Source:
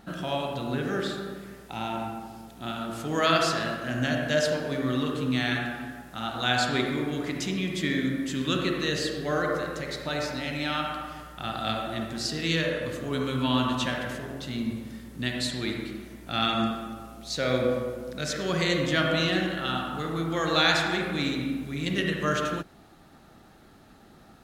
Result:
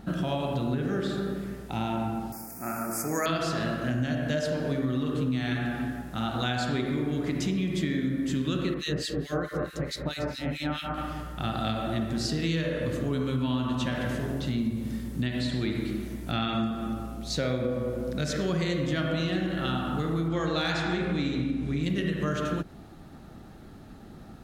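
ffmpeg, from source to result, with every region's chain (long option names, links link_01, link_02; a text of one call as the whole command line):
ffmpeg -i in.wav -filter_complex "[0:a]asettb=1/sr,asplit=3[link_01][link_02][link_03];[link_01]atrim=end=2.324[link_04];[link_02]atrim=start=2.32:end=3.26,asetpts=PTS-STARTPTS,afade=type=in:duration=0.004:curve=qsin,afade=type=out:start_time=0.936:duration=0.004:curve=qsin,aeval=exprs='val(0)+0.00501*(sin(2*PI*60*n/s)+sin(2*PI*2*60*n/s)/2+sin(2*PI*3*60*n/s)/3+sin(2*PI*4*60*n/s)/4+sin(2*PI*5*60*n/s)/5)':channel_layout=same,asuperstop=centerf=3400:order=12:qfactor=1.5,aemphasis=mode=production:type=riaa[link_05];[link_03]atrim=start=3.256[link_06];[link_04][link_05]acrossfade=duration=0.004:curve1=hsin:curve2=qsin[link_07];[link_07][link_06]acrossfade=duration=0.004:curve1=qsin:curve2=hsin,asettb=1/sr,asplit=3[link_08][link_09][link_10];[link_08]atrim=end=8.744[link_11];[link_09]atrim=start=8.74:end=10.98,asetpts=PTS-STARTPTS,afade=type=in:duration=0.004:curve=qsin,afade=type=out:start_time=2.236:duration=0.004:curve=qsin,equalizer=frequency=11000:width=0.31:gain=3.5,acrossover=split=1900[link_12][link_13];[link_12]aeval=exprs='val(0)*(1-1/2+1/2*cos(2*PI*4.6*n/s))':channel_layout=same[link_14];[link_13]aeval=exprs='val(0)*(1-1/2-1/2*cos(2*PI*4.6*n/s))':channel_layout=same[link_15];[link_14][link_15]amix=inputs=2:normalize=0[link_16];[link_10]atrim=start=10.976[link_17];[link_11][link_16]acrossfade=duration=0.004:curve1=hsin:curve2=qsin[link_18];[link_18][link_17]acrossfade=duration=0.004:curve1=qsin:curve2=hsin,asettb=1/sr,asplit=3[link_19][link_20][link_21];[link_19]atrim=end=13.884[link_22];[link_20]atrim=start=13.88:end=16.7,asetpts=PTS-STARTPTS,afade=type=in:duration=0.004:curve=qsin,afade=type=out:start_time=2.816:duration=0.004:curve=qsin,acrossover=split=4100[link_23][link_24];[link_24]acompressor=threshold=-49dB:ratio=4:attack=1:release=60[link_25];[link_23][link_25]amix=inputs=2:normalize=0,highshelf=frequency=4300:gain=5[link_26];[link_21]atrim=start=16.696[link_27];[link_22][link_26]acrossfade=duration=0.004:curve1=hsin:curve2=qsin[link_28];[link_28][link_27]acrossfade=duration=0.004:curve1=qsin:curve2=hsin,asettb=1/sr,asplit=3[link_29][link_30][link_31];[link_29]atrim=end=20.284[link_32];[link_30]atrim=start=20.28:end=21.83,asetpts=PTS-STARTPTS,afade=type=in:duration=0.004:curve=qsin,afade=type=out:start_time=1.546:duration=0.004:curve=qsin,lowpass=7800,asoftclip=type=hard:threshold=-10.5dB,asplit=2[link_33][link_34];[link_34]adelay=17,volume=-11dB[link_35];[link_33][link_35]amix=inputs=2:normalize=0,atrim=end_sample=68355[link_36];[link_31]atrim=start=21.826[link_37];[link_32][link_36]acrossfade=duration=0.004:curve1=hsin:curve2=qsin[link_38];[link_38][link_37]acrossfade=duration=0.004:curve1=qsin:curve2=hsin,lowshelf=frequency=390:gain=10.5,acompressor=threshold=-25dB:ratio=6" out.wav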